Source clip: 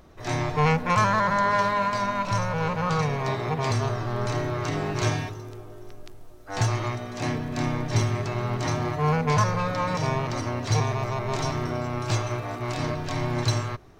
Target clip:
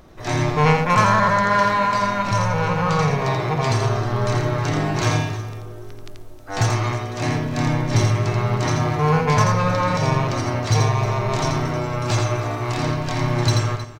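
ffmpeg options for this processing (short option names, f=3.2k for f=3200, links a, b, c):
-af "aeval=exprs='clip(val(0),-1,0.168)':c=same,aecho=1:1:84|314:0.562|0.15,volume=4.5dB"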